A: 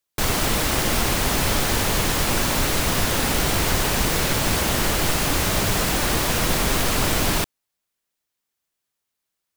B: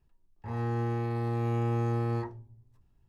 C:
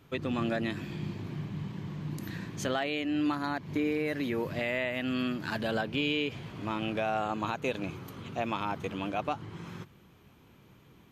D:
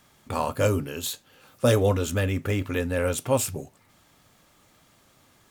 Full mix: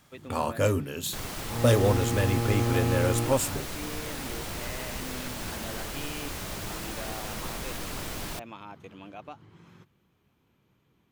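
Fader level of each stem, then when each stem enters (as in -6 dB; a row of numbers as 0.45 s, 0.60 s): -15.0 dB, +2.0 dB, -11.0 dB, -2.0 dB; 0.95 s, 1.05 s, 0.00 s, 0.00 s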